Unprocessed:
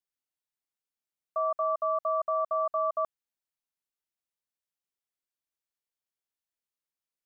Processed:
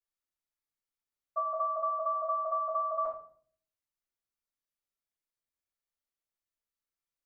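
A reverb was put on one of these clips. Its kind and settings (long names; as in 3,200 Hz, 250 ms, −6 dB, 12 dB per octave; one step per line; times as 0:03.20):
rectangular room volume 54 cubic metres, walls mixed, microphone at 2.7 metres
level −14.5 dB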